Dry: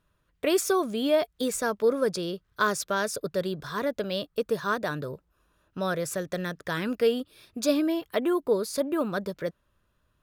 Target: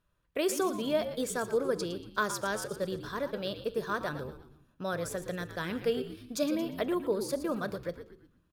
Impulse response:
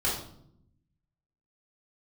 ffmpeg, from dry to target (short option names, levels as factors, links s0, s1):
-filter_complex "[0:a]asplit=5[s0][s1][s2][s3][s4];[s1]adelay=141,afreqshift=-70,volume=0.282[s5];[s2]adelay=282,afreqshift=-140,volume=0.119[s6];[s3]adelay=423,afreqshift=-210,volume=0.0495[s7];[s4]adelay=564,afreqshift=-280,volume=0.0209[s8];[s0][s5][s6][s7][s8]amix=inputs=5:normalize=0,atempo=1.2,asplit=2[s9][s10];[1:a]atrim=start_sample=2205[s11];[s10][s11]afir=irnorm=-1:irlink=0,volume=0.0596[s12];[s9][s12]amix=inputs=2:normalize=0,volume=0.531"